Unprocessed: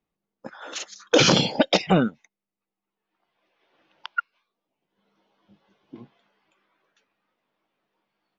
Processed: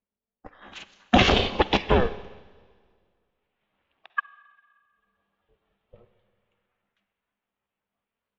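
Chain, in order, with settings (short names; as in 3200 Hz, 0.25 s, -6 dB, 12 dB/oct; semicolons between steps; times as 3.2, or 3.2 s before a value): ring modulator 240 Hz; bell 200 Hz +10.5 dB 0.26 oct; in parallel at -1.5 dB: limiter -16 dBFS, peak gain reduction 10.5 dB; on the sum: resonant high shelf 4100 Hz -10 dB, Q 1.5; on a send at -10 dB: reverb RT60 2.0 s, pre-delay 44 ms; on the sum: upward expander 1.5:1, over -39 dBFS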